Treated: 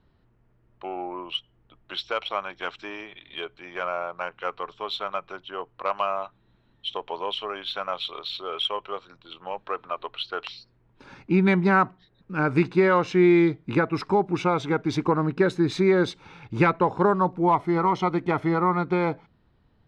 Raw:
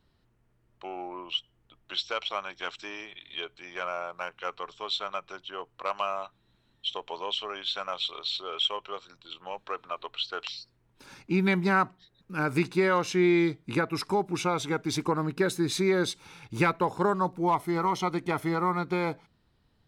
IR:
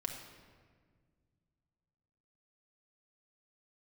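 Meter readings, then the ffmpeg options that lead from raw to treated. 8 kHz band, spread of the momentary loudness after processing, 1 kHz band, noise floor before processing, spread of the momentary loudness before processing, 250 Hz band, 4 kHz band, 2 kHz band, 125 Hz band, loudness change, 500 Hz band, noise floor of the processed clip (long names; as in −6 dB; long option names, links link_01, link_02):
can't be measured, 16 LU, +4.5 dB, −69 dBFS, 14 LU, +5.5 dB, −1.0 dB, +3.0 dB, +5.5 dB, +4.5 dB, +5.5 dB, −64 dBFS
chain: -af "adynamicsmooth=sensitivity=3:basefreq=6500,aemphasis=mode=reproduction:type=75kf,volume=5.5dB"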